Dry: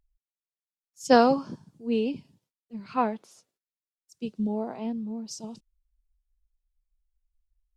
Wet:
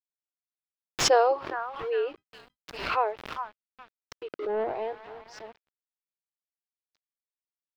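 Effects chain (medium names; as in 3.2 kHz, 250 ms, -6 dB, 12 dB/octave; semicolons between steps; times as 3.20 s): brick-wall FIR high-pass 310 Hz; 4.29–4.95 s: waveshaping leveller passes 2; on a send: repeats whose band climbs or falls 408 ms, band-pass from 1.3 kHz, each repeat 0.7 oct, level -6.5 dB; on the sum: small samples zeroed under -45.5 dBFS; distance through air 350 m; 2.15–2.77 s: power-law waveshaper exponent 0.7; in parallel at -2.5 dB: peak limiter -19.5 dBFS, peak gain reduction 10.5 dB; on the sum: swell ahead of each attack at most 72 dB/s; trim -2.5 dB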